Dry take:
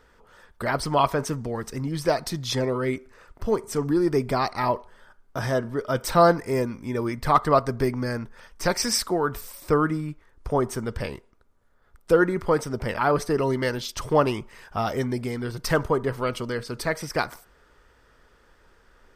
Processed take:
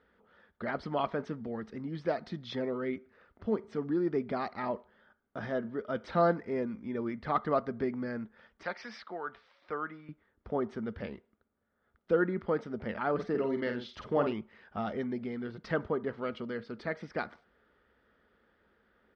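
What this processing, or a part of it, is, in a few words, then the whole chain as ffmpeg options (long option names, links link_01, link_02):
guitar cabinet: -filter_complex "[0:a]highpass=83,equalizer=frequency=130:width_type=q:width=4:gain=-9,equalizer=frequency=210:width_type=q:width=4:gain=8,equalizer=frequency=1000:width_type=q:width=4:gain=-7,equalizer=frequency=2600:width_type=q:width=4:gain=-5,lowpass=frequency=3500:width=0.5412,lowpass=frequency=3500:width=1.3066,asettb=1/sr,asplit=3[link_01][link_02][link_03];[link_01]atrim=end=8.634[link_04];[link_02]atrim=start=8.63:end=10.09,asetpts=PTS-STARTPTS,afade=type=in:duration=0.004:curve=qsin,afade=type=out:start_time=1.456:duration=0.004:curve=qsin,acrossover=split=590 5500:gain=0.178 1 0.0794[link_05][link_06][link_07];[link_05][link_06][link_07]amix=inputs=3:normalize=0[link_08];[link_03]atrim=start=10.086[link_09];[link_04][link_08]acrossfade=duration=0.004:curve1=hsin:curve2=qsin[link_10];[link_10][link_09]acrossfade=duration=0.004:curve1=qsin:curve2=hsin,asplit=3[link_11][link_12][link_13];[link_11]afade=type=out:start_time=13.18:duration=0.02[link_14];[link_12]asplit=2[link_15][link_16];[link_16]adelay=49,volume=-6dB[link_17];[link_15][link_17]amix=inputs=2:normalize=0,afade=type=in:start_time=13.18:duration=0.02,afade=type=out:start_time=14.32:duration=0.02[link_18];[link_13]afade=type=in:start_time=14.32:duration=0.02[link_19];[link_14][link_18][link_19]amix=inputs=3:normalize=0,volume=-8.5dB"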